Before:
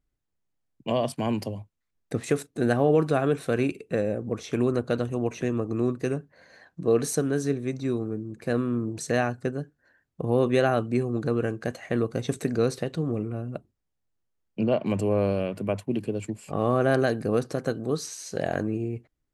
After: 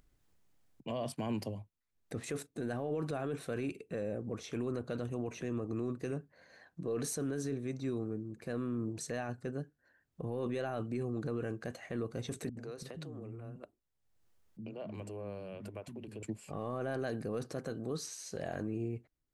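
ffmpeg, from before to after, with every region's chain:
-filter_complex "[0:a]asettb=1/sr,asplit=3[a][b][c];[a]atrim=end=12.494[d];[b]atrim=start=12.49:end=16.23,asetpts=PTS-STARTPTS,afade=t=in:d=0.004:c=qsin,afade=t=out:st=3.736:d=0.004:c=qsin,acompressor=threshold=-33dB:ratio=4:attack=3.2:release=140:knee=1:detection=peak,acrossover=split=260[e][f];[f]adelay=80[g];[e][g]amix=inputs=2:normalize=0,atrim=end_sample=164934[h];[c]atrim=start=16.226[i];[d][h]acrossfade=d=0.004:c1=hsin:c2=qsin[j];[j][i]acrossfade=d=0.004:c1=qsin:c2=hsin,alimiter=limit=-21dB:level=0:latency=1:release=10,acompressor=mode=upward:threshold=-48dB:ratio=2.5,volume=-7dB"

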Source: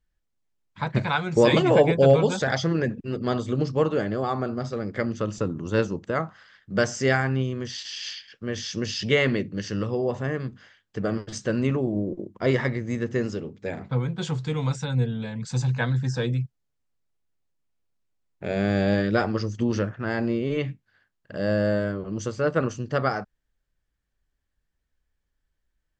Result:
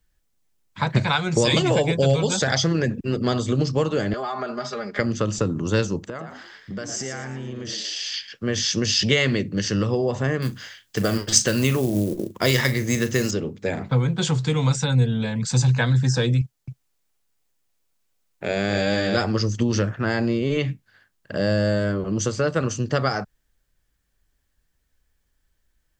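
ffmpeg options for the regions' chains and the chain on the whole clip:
-filter_complex "[0:a]asettb=1/sr,asplit=3[a][b][c];[a]atrim=end=4.134[d];[b]atrim=start=4.13:end=4.99,asetpts=PTS-STARTPTS,afade=t=in:d=0.004:c=qsin,afade=t=out:st=0.856:d=0.004:c=qsin,acrossover=split=550 6300:gain=0.2 1 0.251[e][f][g];[e][f][g]amix=inputs=3:normalize=0,acompressor=threshold=-33dB:ratio=4:attack=3.2:release=140:knee=1:detection=peak,aecho=1:1:4.9:0.81,atrim=end_sample=37926[h];[c]atrim=start=4.986[i];[d][h]acrossfade=d=0.004:c1=hsin:c2=qsin[j];[j][i]acrossfade=d=0.004:c1=qsin:c2=hsin,asettb=1/sr,asplit=3[k][l][m];[k]atrim=end=6.064[n];[l]atrim=start=6.06:end=8.14,asetpts=PTS-STARTPTS,afade=t=in:d=0.004:c=qsin,afade=t=out:st=2.076:d=0.004:c=qsin,acompressor=threshold=-36dB:ratio=8:attack=3.2:release=140:knee=1:detection=peak,asplit=5[o][p][q][r][s];[p]adelay=115,afreqshift=93,volume=-8dB[t];[q]adelay=230,afreqshift=186,volume=-17.4dB[u];[r]adelay=345,afreqshift=279,volume=-26.7dB[v];[s]adelay=460,afreqshift=372,volume=-36.1dB[w];[o][t][u][v][w]amix=inputs=5:normalize=0,atrim=end_sample=91728[x];[m]atrim=start=8.136[y];[n][x]acrossfade=d=0.004:c1=hsin:c2=qsin[z];[z][y]acrossfade=d=0.004:c1=qsin:c2=hsin,asettb=1/sr,asplit=3[aa][ab][ac];[aa]atrim=end=10.424[ad];[ab]atrim=start=10.42:end=13.31,asetpts=PTS-STARTPTS,afade=t=in:d=0.004:c=qsin,afade=t=out:st=2.886:d=0.004:c=qsin,highshelf=f=2.2k:g=10,acrusher=bits=7:mode=log:mix=0:aa=0.000001,asplit=2[ae][af];[af]adelay=39,volume=-13dB[ag];[ae][ag]amix=inputs=2:normalize=0,atrim=end_sample=127449[ah];[ac]atrim=start=13.306[ai];[ad][ah]acrossfade=d=0.004:c1=hsin:c2=qsin[aj];[aj][ai]acrossfade=d=0.004:c1=qsin:c2=hsin,asettb=1/sr,asplit=3[ak][al][am];[ak]atrim=end=16.414[an];[al]atrim=start=16.41:end=19.17,asetpts=PTS-STARTPTS,afade=t=in:d=0.004:c=qsin,afade=t=out:st=2.756:d=0.004:c=qsin,lowshelf=f=330:g=-8.5,aecho=1:1:265:0.708,atrim=end_sample=121716[ao];[am]atrim=start=19.166[ap];[an][ao]acrossfade=d=0.004:c1=hsin:c2=qsin[aq];[aq][ap]acrossfade=d=0.004:c1=qsin:c2=hsin,highshelf=f=5.4k:g=8,acrossover=split=120|3000[ar][as][at];[as]acompressor=threshold=-27dB:ratio=4[au];[ar][au][at]amix=inputs=3:normalize=0,volume=7dB"

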